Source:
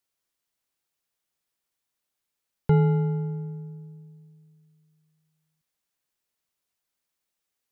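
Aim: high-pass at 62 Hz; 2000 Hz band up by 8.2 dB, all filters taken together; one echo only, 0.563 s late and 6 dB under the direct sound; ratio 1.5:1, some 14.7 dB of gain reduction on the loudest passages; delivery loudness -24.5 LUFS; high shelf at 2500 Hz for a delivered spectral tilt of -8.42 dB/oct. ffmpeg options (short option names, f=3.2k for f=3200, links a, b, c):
-af "highpass=62,equalizer=f=2k:t=o:g=8,highshelf=f=2.5k:g=4.5,acompressor=threshold=-58dB:ratio=1.5,aecho=1:1:563:0.501,volume=15dB"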